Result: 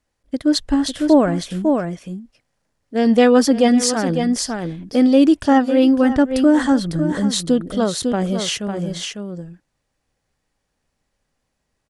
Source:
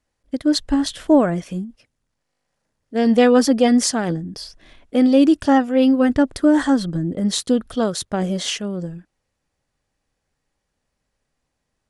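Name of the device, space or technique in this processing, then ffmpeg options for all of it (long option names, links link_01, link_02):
ducked delay: -filter_complex "[0:a]asplit=3[link_01][link_02][link_03];[link_02]adelay=551,volume=-4.5dB[link_04];[link_03]apad=whole_len=548718[link_05];[link_04][link_05]sidechaincompress=threshold=-25dB:ratio=8:attack=41:release=144[link_06];[link_01][link_06]amix=inputs=2:normalize=0,volume=1dB"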